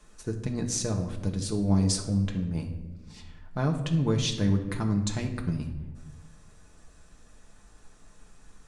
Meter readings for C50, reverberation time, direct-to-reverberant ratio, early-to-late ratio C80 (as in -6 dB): 9.0 dB, 1.2 s, 1.5 dB, 11.5 dB